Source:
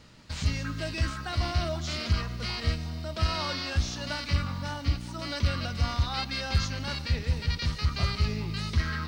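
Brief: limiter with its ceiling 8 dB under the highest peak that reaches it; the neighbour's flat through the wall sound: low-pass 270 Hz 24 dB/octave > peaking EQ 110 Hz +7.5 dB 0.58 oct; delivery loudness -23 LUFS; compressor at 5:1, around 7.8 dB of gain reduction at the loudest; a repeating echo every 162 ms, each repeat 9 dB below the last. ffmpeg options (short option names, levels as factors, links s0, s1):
-af "acompressor=threshold=0.0355:ratio=5,alimiter=level_in=1.41:limit=0.0631:level=0:latency=1,volume=0.708,lowpass=f=270:w=0.5412,lowpass=f=270:w=1.3066,equalizer=f=110:t=o:w=0.58:g=7.5,aecho=1:1:162|324|486|648:0.355|0.124|0.0435|0.0152,volume=4.73"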